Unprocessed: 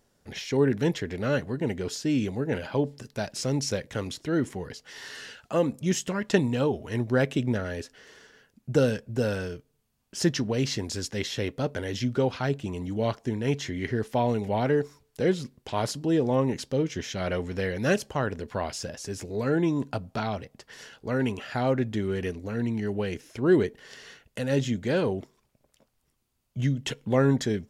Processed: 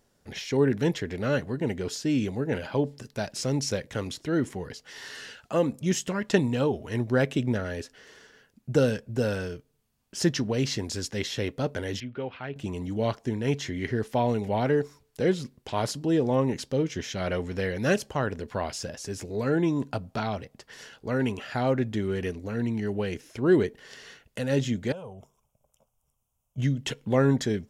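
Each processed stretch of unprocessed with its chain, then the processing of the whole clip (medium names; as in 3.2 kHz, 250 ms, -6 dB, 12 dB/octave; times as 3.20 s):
12.00–12.56 s: four-pole ladder low-pass 3.2 kHz, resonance 40% + bass shelf 190 Hz -4.5 dB
24.92–26.58 s: Butterworth band-stop 4.3 kHz, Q 1.9 + compression 3:1, threshold -36 dBFS + static phaser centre 760 Hz, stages 4
whole clip: none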